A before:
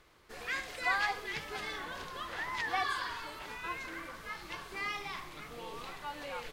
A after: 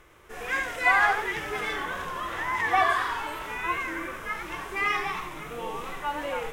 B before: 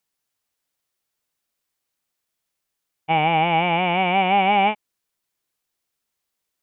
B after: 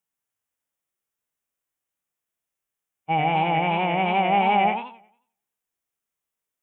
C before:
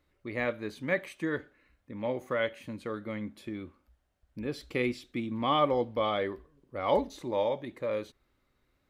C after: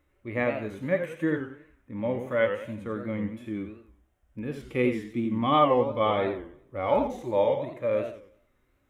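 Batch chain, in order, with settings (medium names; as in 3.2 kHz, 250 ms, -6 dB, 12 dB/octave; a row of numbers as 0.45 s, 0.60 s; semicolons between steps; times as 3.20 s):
harmonic-percussive split percussive -12 dB; peaking EQ 4.4 kHz -14.5 dB 0.41 oct; modulated delay 90 ms, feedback 35%, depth 201 cents, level -8 dB; peak normalisation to -9 dBFS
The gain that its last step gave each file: +11.5 dB, -2.0 dB, +6.5 dB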